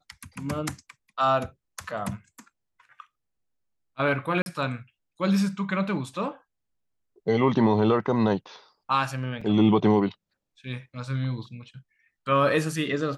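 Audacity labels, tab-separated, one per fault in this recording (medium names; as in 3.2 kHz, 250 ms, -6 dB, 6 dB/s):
1.840000	1.840000	dropout 3.1 ms
4.420000	4.460000	dropout 41 ms
9.410000	9.410000	dropout 4.6 ms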